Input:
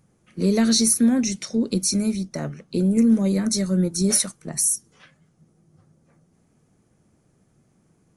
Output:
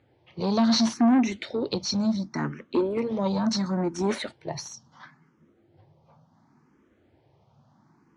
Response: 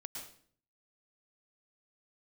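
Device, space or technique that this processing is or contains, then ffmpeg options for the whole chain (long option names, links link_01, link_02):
barber-pole phaser into a guitar amplifier: -filter_complex "[0:a]asplit=2[link_01][link_02];[link_02]afreqshift=0.71[link_03];[link_01][link_03]amix=inputs=2:normalize=1,asoftclip=type=tanh:threshold=-20dB,highpass=93,equalizer=frequency=180:width_type=q:width=4:gain=-10,equalizer=frequency=460:width_type=q:width=4:gain=-4,equalizer=frequency=930:width_type=q:width=4:gain=9,equalizer=frequency=2500:width_type=q:width=4:gain=-3,lowpass=frequency=4400:width=0.5412,lowpass=frequency=4400:width=1.3066,volume=6dB"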